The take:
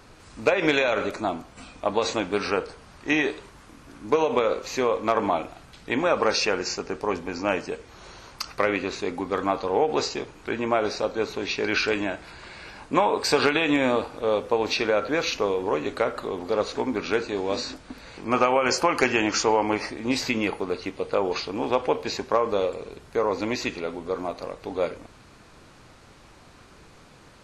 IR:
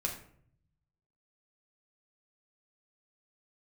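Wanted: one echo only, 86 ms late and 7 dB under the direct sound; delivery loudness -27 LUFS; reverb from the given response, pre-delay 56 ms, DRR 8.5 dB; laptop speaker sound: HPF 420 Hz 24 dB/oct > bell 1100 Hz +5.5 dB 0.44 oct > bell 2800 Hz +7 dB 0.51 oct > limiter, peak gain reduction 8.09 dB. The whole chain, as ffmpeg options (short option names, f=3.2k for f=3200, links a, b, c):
-filter_complex "[0:a]aecho=1:1:86:0.447,asplit=2[a][b];[1:a]atrim=start_sample=2205,adelay=56[c];[b][c]afir=irnorm=-1:irlink=0,volume=-11.5dB[d];[a][d]amix=inputs=2:normalize=0,highpass=f=420:w=0.5412,highpass=f=420:w=1.3066,equalizer=f=1.1k:t=o:w=0.44:g=5.5,equalizer=f=2.8k:t=o:w=0.51:g=7,volume=-2dB,alimiter=limit=-14.5dB:level=0:latency=1"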